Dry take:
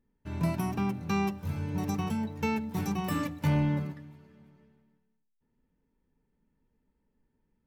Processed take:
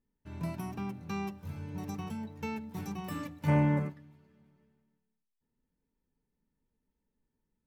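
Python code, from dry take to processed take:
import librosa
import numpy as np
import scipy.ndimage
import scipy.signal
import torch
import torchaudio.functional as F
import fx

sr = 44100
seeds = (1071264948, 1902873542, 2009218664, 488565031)

y = fx.graphic_eq(x, sr, hz=(125, 250, 500, 1000, 2000, 4000, 8000), db=(7, 5, 10, 8, 10, -7, 10), at=(3.47, 3.88), fade=0.02)
y = F.gain(torch.from_numpy(y), -7.5).numpy()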